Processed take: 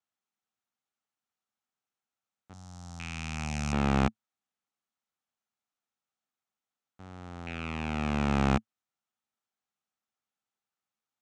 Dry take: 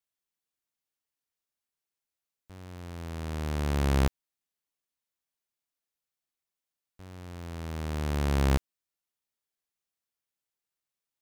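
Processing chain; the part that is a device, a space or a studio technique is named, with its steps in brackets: 2.53–3.73 s: FFT filter 160 Hz 0 dB, 420 Hz -18 dB, 750 Hz -4 dB, 2.4 kHz -13 dB, 5.4 kHz +11 dB; car door speaker with a rattle (rattle on loud lows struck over -41 dBFS, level -26 dBFS; cabinet simulation 85–7500 Hz, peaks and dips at 110 Hz +4 dB, 220 Hz +9 dB, 780 Hz +8 dB, 1.3 kHz +8 dB, 4.8 kHz -5 dB); trim -1.5 dB

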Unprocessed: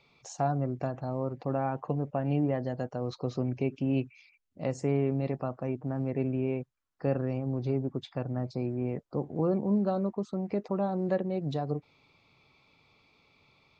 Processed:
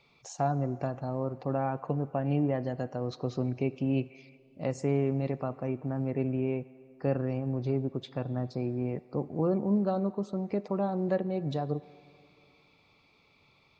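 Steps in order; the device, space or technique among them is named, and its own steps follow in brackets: filtered reverb send (on a send: high-pass 470 Hz 6 dB/octave + low-pass 5.2 kHz + reverberation RT60 2.6 s, pre-delay 34 ms, DRR 17 dB)

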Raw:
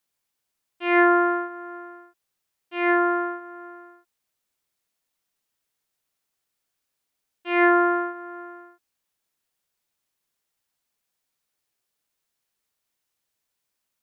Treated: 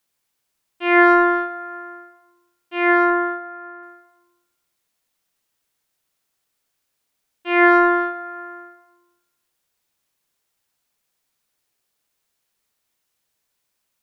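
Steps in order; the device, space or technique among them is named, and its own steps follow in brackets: saturated reverb return (on a send at -10 dB: reverberation RT60 1.1 s, pre-delay 50 ms + saturation -15.5 dBFS, distortion -15 dB); 3.10–3.83 s: on the sum: tone controls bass +1 dB, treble -14 dB; trim +5 dB

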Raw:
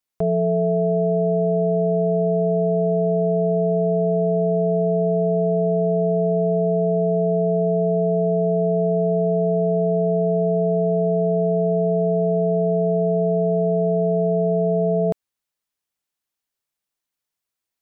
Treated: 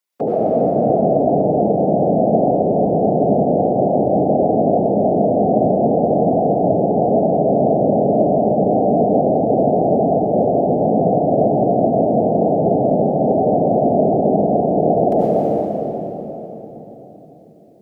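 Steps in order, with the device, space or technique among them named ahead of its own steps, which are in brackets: algorithmic reverb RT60 1 s, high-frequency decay 0.95×, pre-delay 55 ms, DRR -3 dB; whispering ghost (whisper effect; high-pass 240 Hz 12 dB/octave; reverberation RT60 3.9 s, pre-delay 115 ms, DRR -2.5 dB); trim +2 dB

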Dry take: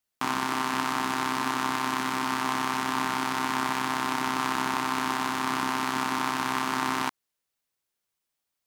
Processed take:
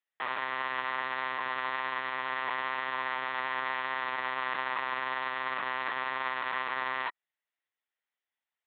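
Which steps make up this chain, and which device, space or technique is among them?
talking toy (LPC vocoder at 8 kHz pitch kept; high-pass 450 Hz 12 dB/octave; peaking EQ 1.9 kHz +10.5 dB 0.22 oct); trim -4.5 dB

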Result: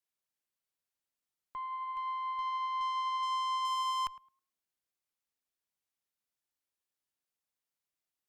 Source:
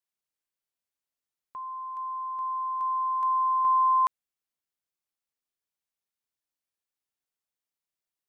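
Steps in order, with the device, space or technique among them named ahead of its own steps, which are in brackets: rockabilly slapback (valve stage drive 32 dB, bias 0.35; tape echo 106 ms, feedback 23%, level -13 dB, low-pass 1.2 kHz)

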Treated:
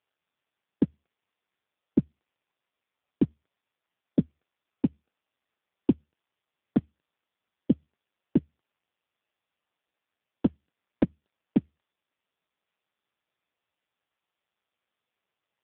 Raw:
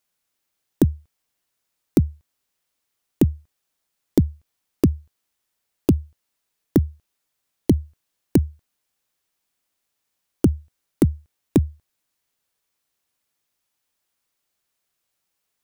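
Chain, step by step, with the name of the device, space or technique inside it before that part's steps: telephone (band-pass 250–3200 Hz; AMR-NB 5.15 kbps 8 kHz)

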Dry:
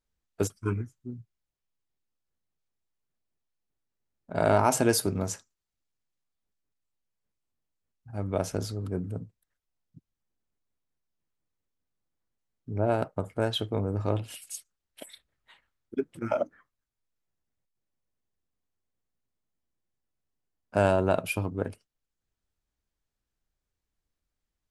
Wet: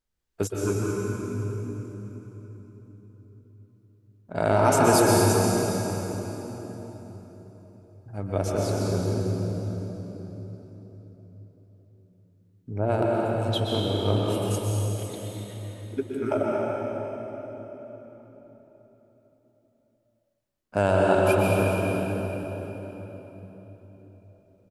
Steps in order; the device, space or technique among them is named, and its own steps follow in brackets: 13.05–13.49 s: steep high-pass 2.8 kHz; cave (delay 219 ms -14 dB; reverberation RT60 4.2 s, pre-delay 115 ms, DRR -4 dB)

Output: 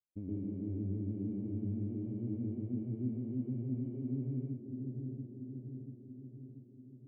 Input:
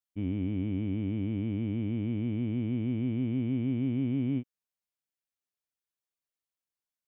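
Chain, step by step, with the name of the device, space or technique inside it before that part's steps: feedback echo behind a low-pass 686 ms, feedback 57%, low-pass 730 Hz, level -15.5 dB; television next door (compression 5:1, threshold -38 dBFS, peak gain reduction 11.5 dB; low-pass 550 Hz 12 dB/octave; reverberation RT60 0.40 s, pre-delay 113 ms, DRR -3.5 dB); trim -2.5 dB

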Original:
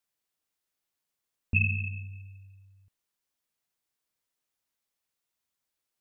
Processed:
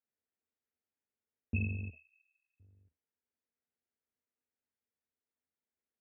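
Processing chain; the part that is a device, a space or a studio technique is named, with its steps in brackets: 1.90–2.60 s: steep high-pass 1.5 kHz 36 dB/octave; sub-octave bass pedal (octave divider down 2 oct, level -4 dB; cabinet simulation 78–2200 Hz, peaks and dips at 80 Hz +9 dB, 130 Hz -5 dB, 240 Hz +10 dB, 440 Hz +8 dB, 1.1 kHz -8 dB); trim -7.5 dB

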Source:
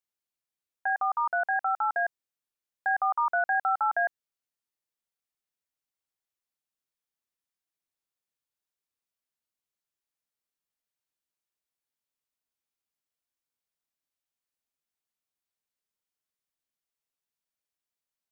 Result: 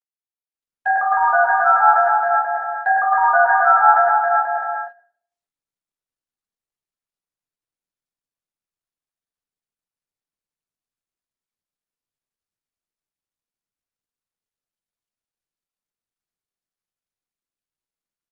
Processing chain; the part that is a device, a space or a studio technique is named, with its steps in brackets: bouncing-ball echo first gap 270 ms, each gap 0.8×, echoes 5; speakerphone in a meeting room (reverberation RT60 0.60 s, pre-delay 8 ms, DRR -4.5 dB; level rider gain up to 5.5 dB; gate -28 dBFS, range -19 dB; trim +1 dB; Opus 32 kbps 48 kHz)

